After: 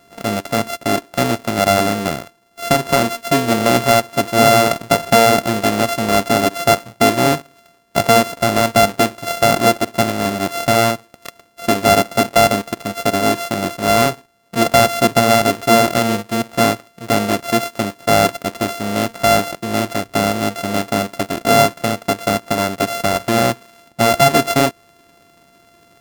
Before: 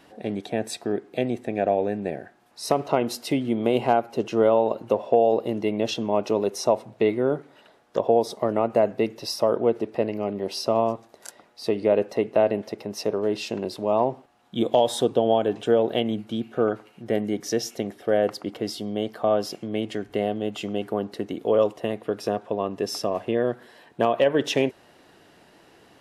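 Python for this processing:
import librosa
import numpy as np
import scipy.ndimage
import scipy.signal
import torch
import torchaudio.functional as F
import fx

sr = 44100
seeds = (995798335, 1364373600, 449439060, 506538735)

y = np.r_[np.sort(x[:len(x) // 64 * 64].reshape(-1, 64), axis=1).ravel(), x[len(x) // 64 * 64:]]
y = fx.leveller(y, sr, passes=1)
y = y * 10.0 ** (5.0 / 20.0)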